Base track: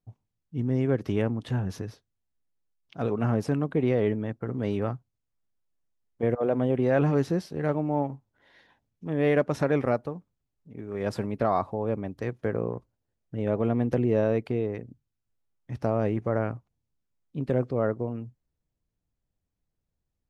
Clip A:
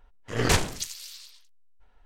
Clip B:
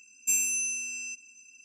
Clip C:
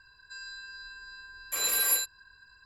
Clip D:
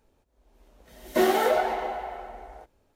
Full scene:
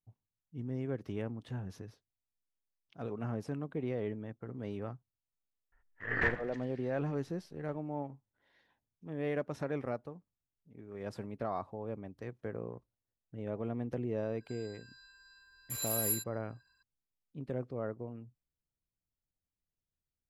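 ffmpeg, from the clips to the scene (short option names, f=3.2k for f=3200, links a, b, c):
-filter_complex "[0:a]volume=-12dB[a];[1:a]lowpass=f=1.8k:t=q:w=9.4[b];[3:a]equalizer=f=13k:w=0.32:g=9[c];[b]atrim=end=2.05,asetpts=PTS-STARTPTS,volume=-15dB,afade=t=in:d=0.004:c=hsin,afade=t=out:st=2.046:d=0.004:c=hsin,adelay=5720[d];[c]atrim=end=2.65,asetpts=PTS-STARTPTS,volume=-15.5dB,afade=t=in:d=0.004:c=hsin,afade=t=out:st=2.646:d=0.004:c=hsin,adelay=14180[e];[a][d][e]amix=inputs=3:normalize=0"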